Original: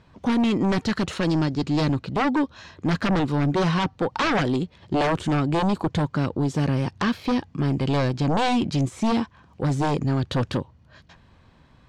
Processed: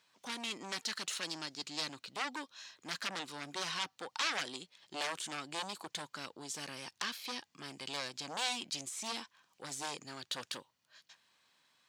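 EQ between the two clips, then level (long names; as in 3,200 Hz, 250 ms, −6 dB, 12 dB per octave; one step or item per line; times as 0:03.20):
high-pass filter 120 Hz
first difference
+1.5 dB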